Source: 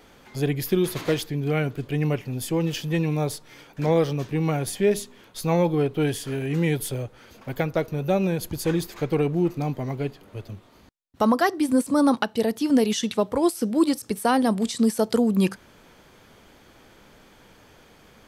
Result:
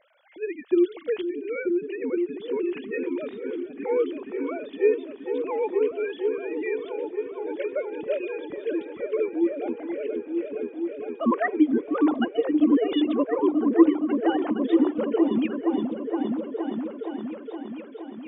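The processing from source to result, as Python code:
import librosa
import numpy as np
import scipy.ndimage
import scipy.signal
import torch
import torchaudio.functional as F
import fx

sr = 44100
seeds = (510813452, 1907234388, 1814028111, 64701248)

y = fx.sine_speech(x, sr)
y = fx.echo_opening(y, sr, ms=468, hz=200, octaves=1, feedback_pct=70, wet_db=0)
y = y * 10.0 ** (-3.5 / 20.0)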